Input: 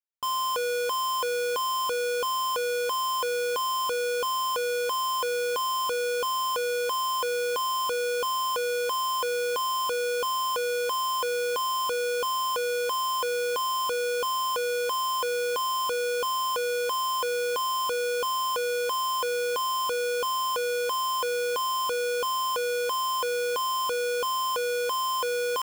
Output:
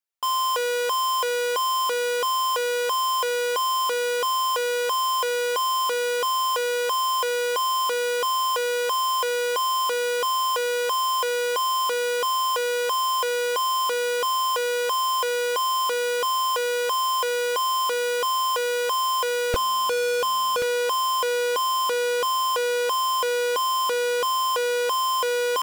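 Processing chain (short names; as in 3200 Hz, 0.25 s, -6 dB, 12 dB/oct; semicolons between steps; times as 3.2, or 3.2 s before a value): HPF 400 Hz 12 dB/oct, from 19.54 s 79 Hz, from 20.62 s 270 Hz; Doppler distortion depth 0.8 ms; gain +4.5 dB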